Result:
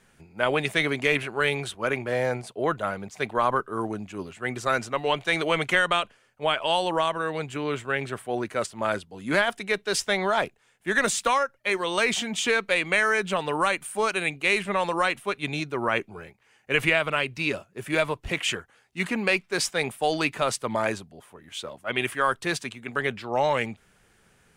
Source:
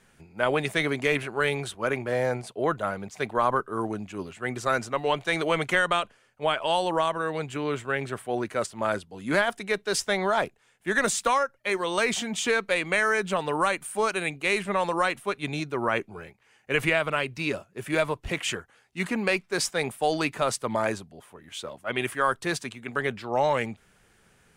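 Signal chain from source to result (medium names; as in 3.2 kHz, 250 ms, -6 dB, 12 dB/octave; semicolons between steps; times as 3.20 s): dynamic bell 2.8 kHz, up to +4 dB, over -40 dBFS, Q 1.2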